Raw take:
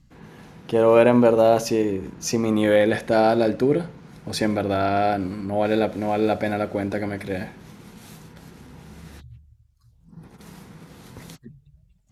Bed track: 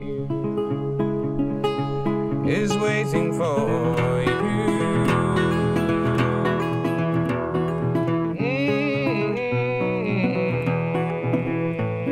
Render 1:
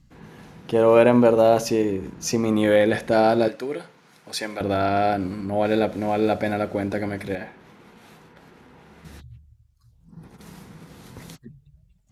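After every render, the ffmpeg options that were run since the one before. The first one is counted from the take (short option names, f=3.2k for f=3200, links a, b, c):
-filter_complex "[0:a]asettb=1/sr,asplit=3[a][b][c];[a]atrim=end=3.484[d];[b]atrim=start=3.48:end=4.61,asetpts=PTS-STARTPTS,afade=t=in:d=0.004:c=qsin,afade=t=out:st=1.126:d=0.004:c=qsin,highpass=f=1.1k:p=1[e];[c]atrim=start=4.606[f];[d][e]acrossfade=d=0.004:c1=hsin:c2=qsin[g];[g][f]acrossfade=d=0.004:c1=qsin:c2=hsin,asettb=1/sr,asplit=3[h][i][j];[h]atrim=end=7.354[k];[i]atrim=start=7.35:end=9.05,asetpts=PTS-STARTPTS,afade=t=in:d=0.004:c=qsin,afade=t=out:st=1.696:d=0.004:c=qsin,bass=f=250:g=-11,treble=f=4k:g=-12[l];[j]atrim=start=9.046[m];[k][l]acrossfade=d=0.004:c1=hsin:c2=qsin[n];[n][m]acrossfade=d=0.004:c1=qsin:c2=hsin"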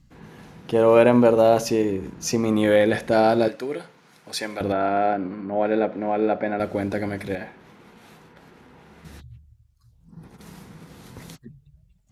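-filter_complex "[0:a]asettb=1/sr,asplit=3[a][b][c];[a]atrim=end=4.724[d];[b]atrim=start=4.72:end=6.6,asetpts=PTS-STARTPTS,afade=t=in:d=0.004:c=qsin,afade=t=out:st=1.876:d=0.004:c=qsin,highpass=200,lowpass=2.1k[e];[c]atrim=start=6.596[f];[d][e]acrossfade=d=0.004:c1=hsin:c2=qsin[g];[g][f]acrossfade=d=0.004:c1=qsin:c2=hsin"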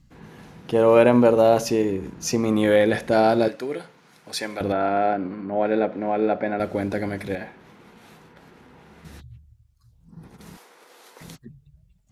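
-filter_complex "[0:a]asettb=1/sr,asplit=3[a][b][c];[a]atrim=end=10.574[d];[b]atrim=start=10.57:end=11.21,asetpts=PTS-STARTPTS,afade=t=in:d=0.004:c=qsin,afade=t=out:st=0.636:d=0.004:c=qsin,highpass=f=430:w=0.5412,highpass=f=430:w=1.3066[e];[c]atrim=start=11.206[f];[d][e]acrossfade=d=0.004:c1=hsin:c2=qsin[g];[g][f]acrossfade=d=0.004:c1=qsin:c2=hsin"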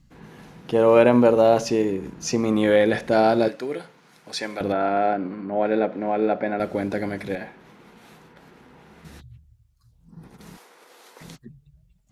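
-filter_complex "[0:a]acrossover=split=8400[a][b];[b]acompressor=threshold=-56dB:ratio=4:attack=1:release=60[c];[a][c]amix=inputs=2:normalize=0,equalizer=f=88:w=4.7:g=-10"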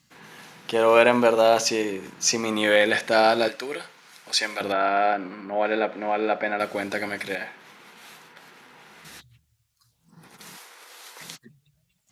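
-af "highpass=110,tiltshelf=f=730:g=-8.5"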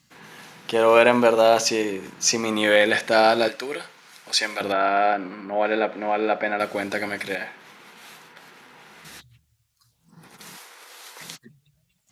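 -af "volume=1.5dB,alimiter=limit=-2dB:level=0:latency=1"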